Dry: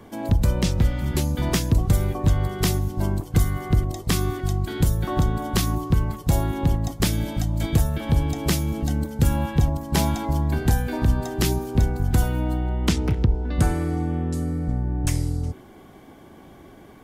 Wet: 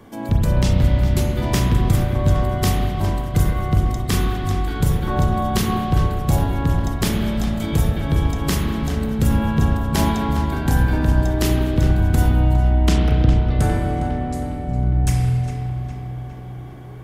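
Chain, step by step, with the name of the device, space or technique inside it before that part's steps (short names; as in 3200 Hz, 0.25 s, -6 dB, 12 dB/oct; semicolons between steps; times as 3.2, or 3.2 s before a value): dub delay into a spring reverb (darkening echo 0.408 s, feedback 63%, low-pass 4500 Hz, level -10.5 dB; spring tank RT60 1.9 s, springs 32/39 ms, chirp 35 ms, DRR -0.5 dB)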